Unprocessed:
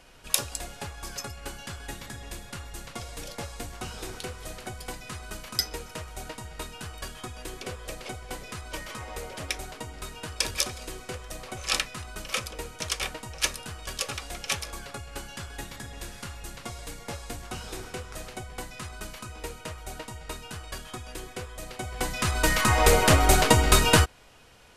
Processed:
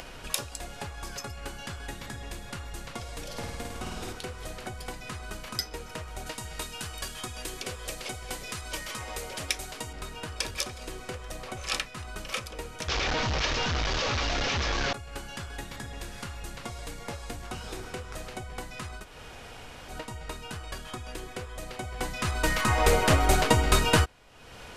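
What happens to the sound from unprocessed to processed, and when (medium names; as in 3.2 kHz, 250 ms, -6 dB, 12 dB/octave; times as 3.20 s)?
3.25–4.13 s: flutter echo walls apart 9 m, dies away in 1 s
6.26–9.93 s: treble shelf 2.9 kHz +10.5 dB
12.88–14.93 s: one-bit delta coder 32 kbps, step -18.5 dBFS
19.01–19.93 s: room tone, crossfade 0.10 s
whole clip: treble shelf 5.6 kHz -5.5 dB; upward compressor, threshold -29 dBFS; trim -2.5 dB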